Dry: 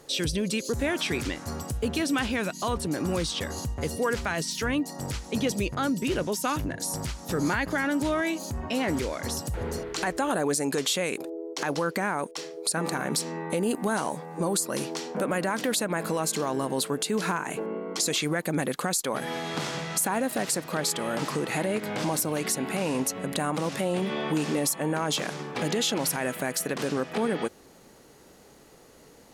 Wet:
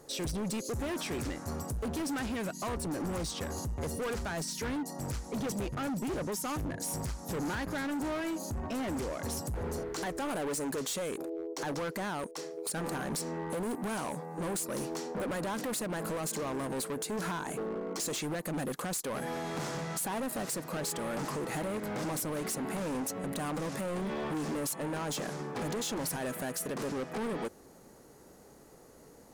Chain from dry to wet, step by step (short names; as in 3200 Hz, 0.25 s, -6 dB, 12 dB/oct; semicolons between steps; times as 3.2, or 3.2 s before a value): bell 3100 Hz -9.5 dB 1.4 oct; overloaded stage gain 30.5 dB; gain -1.5 dB